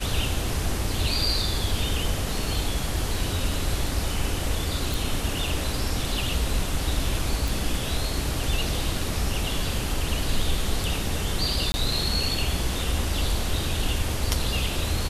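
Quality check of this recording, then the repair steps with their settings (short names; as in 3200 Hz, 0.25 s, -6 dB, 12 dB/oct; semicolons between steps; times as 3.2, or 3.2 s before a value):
4.94 pop
7.48 pop
11.72–11.74 gap 20 ms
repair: de-click; interpolate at 11.72, 20 ms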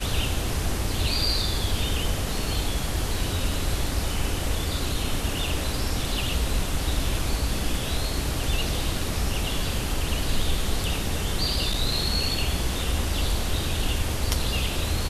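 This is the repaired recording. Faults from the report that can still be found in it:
none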